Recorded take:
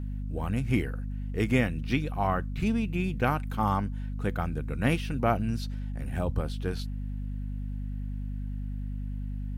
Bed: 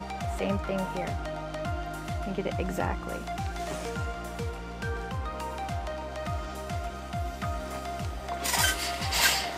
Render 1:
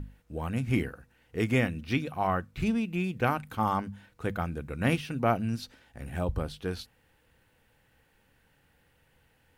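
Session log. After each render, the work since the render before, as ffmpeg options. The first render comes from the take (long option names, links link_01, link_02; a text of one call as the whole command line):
ffmpeg -i in.wav -af "bandreject=frequency=50:width_type=h:width=6,bandreject=frequency=100:width_type=h:width=6,bandreject=frequency=150:width_type=h:width=6,bandreject=frequency=200:width_type=h:width=6,bandreject=frequency=250:width_type=h:width=6" out.wav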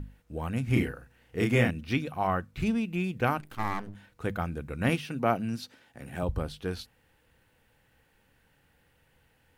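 ffmpeg -i in.wav -filter_complex "[0:a]asettb=1/sr,asplit=3[link_01][link_02][link_03];[link_01]atrim=end=0.674[link_04];[link_02]atrim=start=0.67:end=1.71,asetpts=PTS-STARTPTS,afade=type=in:duration=0.004:curve=qsin,afade=type=out:start_time=1.036:duration=0.004:curve=qsin,asplit=2[link_05][link_06];[link_06]adelay=33,volume=-2.5dB[link_07];[link_05][link_07]amix=inputs=2:normalize=0,atrim=end_sample=45864[link_08];[link_03]atrim=start=1.706[link_09];[link_04][link_08]acrossfade=duration=0.004:curve1=hsin:curve2=qsin[link_10];[link_10][link_09]acrossfade=duration=0.004:curve1=qsin:curve2=hsin,asettb=1/sr,asplit=3[link_11][link_12][link_13];[link_11]atrim=end=3.404[link_14];[link_12]atrim=start=3.4:end=3.95,asetpts=PTS-STARTPTS,afade=type=in:duration=0.004:curve=qsin,afade=type=out:start_time=0.546:duration=0.004:curve=qsin,aeval=exprs='max(val(0),0)':channel_layout=same[link_15];[link_13]atrim=start=3.946[link_16];[link_14][link_15]acrossfade=duration=0.004:curve1=hsin:curve2=qsin[link_17];[link_17][link_16]acrossfade=duration=0.004:curve1=qsin:curve2=hsin,asettb=1/sr,asplit=3[link_18][link_19][link_20];[link_18]atrim=end=4.894[link_21];[link_19]atrim=start=4.89:end=6.23,asetpts=PTS-STARTPTS,afade=type=in:duration=0.004:curve=qsin,afade=type=out:start_time=1.336:duration=0.004:curve=qsin,highpass=130[link_22];[link_20]atrim=start=6.226[link_23];[link_21][link_22]acrossfade=duration=0.004:curve1=hsin:curve2=qsin[link_24];[link_24][link_23]acrossfade=duration=0.004:curve1=qsin:curve2=hsin" out.wav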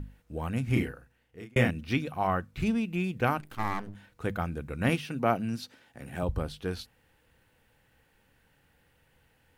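ffmpeg -i in.wav -filter_complex "[0:a]asplit=2[link_01][link_02];[link_01]atrim=end=1.56,asetpts=PTS-STARTPTS,afade=type=out:start_time=0.63:duration=0.93[link_03];[link_02]atrim=start=1.56,asetpts=PTS-STARTPTS,afade=type=in:duration=0.004:curve=hsin[link_04];[link_03][link_04]concat=n=2:v=0:a=1" out.wav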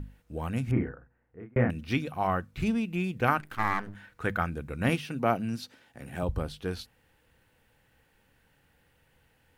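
ffmpeg -i in.wav -filter_complex "[0:a]asettb=1/sr,asplit=3[link_01][link_02][link_03];[link_01]atrim=end=0.714[link_04];[link_02]atrim=start=0.71:end=1.7,asetpts=PTS-STARTPTS,afade=type=in:duration=0.004:curve=qsin,afade=type=out:start_time=0.986:duration=0.004:curve=qsin,lowpass=frequency=1700:width=0.5412,lowpass=frequency=1700:width=1.3066[link_05];[link_03]atrim=start=1.696[link_06];[link_04][link_05]acrossfade=duration=0.004:curve1=hsin:curve2=qsin[link_07];[link_07][link_06]acrossfade=duration=0.004:curve1=qsin:curve2=hsin,asettb=1/sr,asplit=3[link_08][link_09][link_10];[link_08]atrim=end=3.284[link_11];[link_09]atrim=start=3.28:end=4.5,asetpts=PTS-STARTPTS,afade=type=in:duration=0.004:curve=qsin,afade=type=out:start_time=1.216:duration=0.004:curve=qsin,equalizer=frequency=1600:width_type=o:width=1.1:gain=8.5[link_12];[link_10]atrim=start=4.496[link_13];[link_11][link_12]acrossfade=duration=0.004:curve1=hsin:curve2=qsin[link_14];[link_14][link_13]acrossfade=duration=0.004:curve1=qsin:curve2=hsin" out.wav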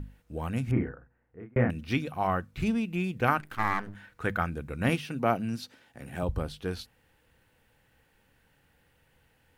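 ffmpeg -i in.wav -af anull out.wav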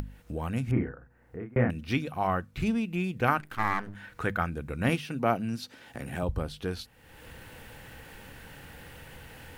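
ffmpeg -i in.wav -af "acompressor=mode=upward:threshold=-30dB:ratio=2.5" out.wav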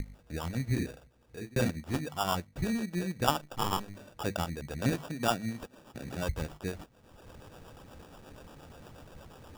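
ffmpeg -i in.wav -filter_complex "[0:a]acrossover=split=410[link_01][link_02];[link_01]aeval=exprs='val(0)*(1-0.7/2+0.7/2*cos(2*PI*8.4*n/s))':channel_layout=same[link_03];[link_02]aeval=exprs='val(0)*(1-0.7/2-0.7/2*cos(2*PI*8.4*n/s))':channel_layout=same[link_04];[link_03][link_04]amix=inputs=2:normalize=0,acrusher=samples=21:mix=1:aa=0.000001" out.wav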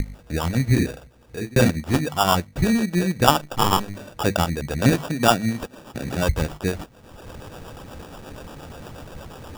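ffmpeg -i in.wav -af "volume=12dB,alimiter=limit=-1dB:level=0:latency=1" out.wav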